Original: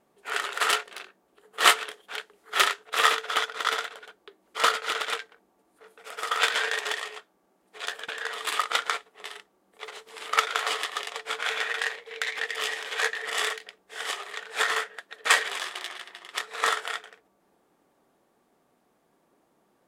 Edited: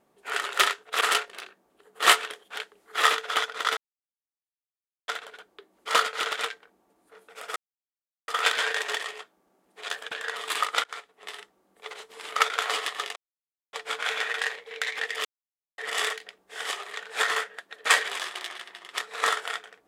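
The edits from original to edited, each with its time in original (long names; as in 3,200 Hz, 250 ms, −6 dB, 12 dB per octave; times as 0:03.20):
0:02.59–0:03.01: move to 0:00.59
0:03.77: splice in silence 1.31 s
0:06.25: splice in silence 0.72 s
0:08.81–0:09.28: fade in, from −20.5 dB
0:11.13: splice in silence 0.57 s
0:12.65–0:13.18: silence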